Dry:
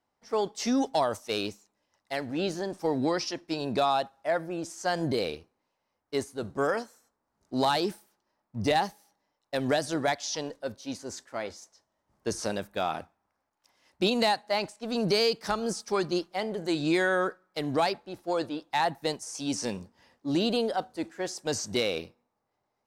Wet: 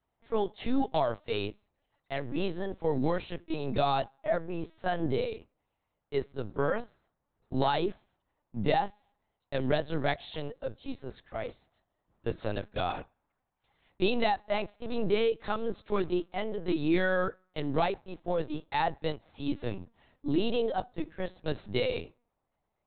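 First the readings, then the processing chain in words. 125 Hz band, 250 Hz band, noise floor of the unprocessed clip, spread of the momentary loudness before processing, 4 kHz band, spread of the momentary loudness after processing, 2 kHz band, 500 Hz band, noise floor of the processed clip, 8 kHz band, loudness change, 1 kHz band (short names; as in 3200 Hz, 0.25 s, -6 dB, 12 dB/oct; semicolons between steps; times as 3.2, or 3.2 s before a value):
+1.5 dB, -2.5 dB, -81 dBFS, 11 LU, -7.0 dB, 11 LU, -3.5 dB, -1.5 dB, -82 dBFS, under -40 dB, -2.5 dB, -2.5 dB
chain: bell 1300 Hz -3 dB 1.9 oct; LPC vocoder at 8 kHz pitch kept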